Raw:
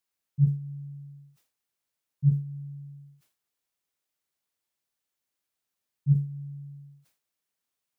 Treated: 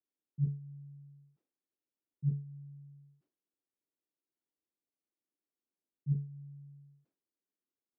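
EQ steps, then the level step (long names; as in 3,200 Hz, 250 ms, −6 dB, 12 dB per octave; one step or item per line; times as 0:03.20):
resonant band-pass 310 Hz, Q 2.5
+3.0 dB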